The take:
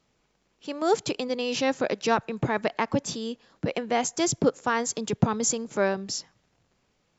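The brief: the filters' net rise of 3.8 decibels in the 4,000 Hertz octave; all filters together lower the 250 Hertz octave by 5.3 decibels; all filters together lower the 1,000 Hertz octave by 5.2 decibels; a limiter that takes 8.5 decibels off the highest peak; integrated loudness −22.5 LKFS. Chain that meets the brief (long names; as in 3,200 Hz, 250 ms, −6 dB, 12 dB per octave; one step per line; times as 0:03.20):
parametric band 250 Hz −6.5 dB
parametric band 1,000 Hz −7 dB
parametric band 4,000 Hz +5.5 dB
level +8 dB
brickwall limiter −10 dBFS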